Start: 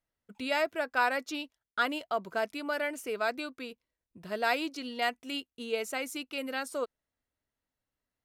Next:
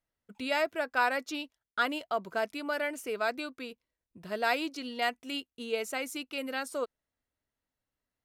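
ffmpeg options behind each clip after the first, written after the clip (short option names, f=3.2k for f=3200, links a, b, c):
-af anull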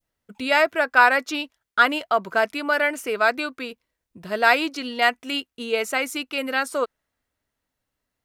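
-af "adynamicequalizer=threshold=0.00794:dfrequency=1500:dqfactor=0.71:tfrequency=1500:tqfactor=0.71:attack=5:release=100:ratio=0.375:range=3:mode=boostabove:tftype=bell,volume=7.5dB"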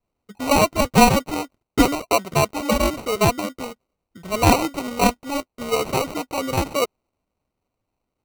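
-af "acrusher=samples=26:mix=1:aa=0.000001,volume=2dB"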